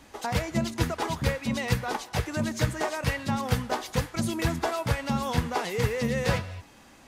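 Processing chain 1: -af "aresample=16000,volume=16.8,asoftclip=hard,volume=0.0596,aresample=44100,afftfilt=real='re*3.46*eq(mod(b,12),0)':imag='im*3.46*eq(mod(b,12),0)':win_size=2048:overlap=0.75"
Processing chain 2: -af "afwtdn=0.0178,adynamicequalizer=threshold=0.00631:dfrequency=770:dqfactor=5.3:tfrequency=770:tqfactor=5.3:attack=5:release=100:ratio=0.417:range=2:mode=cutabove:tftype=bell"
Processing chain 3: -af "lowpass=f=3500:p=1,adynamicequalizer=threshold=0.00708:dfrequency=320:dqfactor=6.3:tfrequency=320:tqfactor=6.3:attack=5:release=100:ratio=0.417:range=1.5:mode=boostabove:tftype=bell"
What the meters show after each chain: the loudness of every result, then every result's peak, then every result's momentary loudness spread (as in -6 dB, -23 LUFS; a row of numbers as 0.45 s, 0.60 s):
-34.5 LUFS, -29.5 LUFS, -29.0 LUFS; -18.5 dBFS, -11.0 dBFS, -10.5 dBFS; 8 LU, 4 LU, 4 LU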